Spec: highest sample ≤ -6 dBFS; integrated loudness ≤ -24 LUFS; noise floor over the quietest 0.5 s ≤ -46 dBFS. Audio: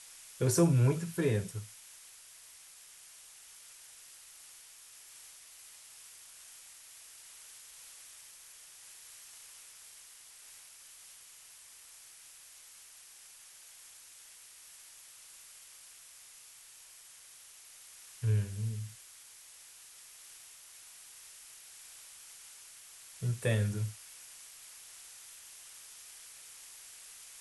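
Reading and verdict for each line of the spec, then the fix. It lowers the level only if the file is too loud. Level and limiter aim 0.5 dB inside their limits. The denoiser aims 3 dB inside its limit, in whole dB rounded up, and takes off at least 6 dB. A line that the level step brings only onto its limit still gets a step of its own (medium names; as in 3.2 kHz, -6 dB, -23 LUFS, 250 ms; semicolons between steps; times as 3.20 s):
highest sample -16.0 dBFS: pass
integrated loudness -37.5 LUFS: pass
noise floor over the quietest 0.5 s -55 dBFS: pass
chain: none needed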